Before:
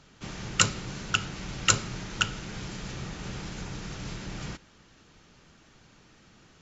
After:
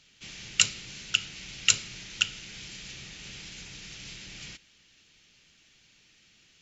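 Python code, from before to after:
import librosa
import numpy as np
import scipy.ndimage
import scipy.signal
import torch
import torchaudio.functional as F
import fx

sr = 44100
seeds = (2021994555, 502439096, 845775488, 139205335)

y = fx.high_shelf_res(x, sr, hz=1700.0, db=12.5, q=1.5)
y = F.gain(torch.from_numpy(y), -12.5).numpy()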